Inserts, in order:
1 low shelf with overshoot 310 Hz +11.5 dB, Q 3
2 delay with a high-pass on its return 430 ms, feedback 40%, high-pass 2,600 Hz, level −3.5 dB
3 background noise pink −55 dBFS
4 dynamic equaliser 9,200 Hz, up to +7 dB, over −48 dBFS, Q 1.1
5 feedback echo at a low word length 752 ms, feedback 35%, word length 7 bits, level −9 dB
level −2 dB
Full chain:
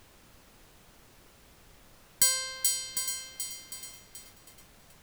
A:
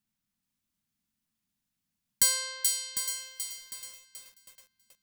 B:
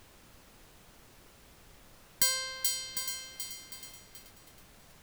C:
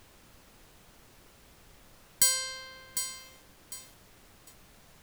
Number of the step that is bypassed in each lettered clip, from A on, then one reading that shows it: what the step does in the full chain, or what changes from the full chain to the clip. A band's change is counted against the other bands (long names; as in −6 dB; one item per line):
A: 3, change in momentary loudness spread −2 LU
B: 4, 8 kHz band −5.0 dB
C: 2, change in momentary loudness spread −2 LU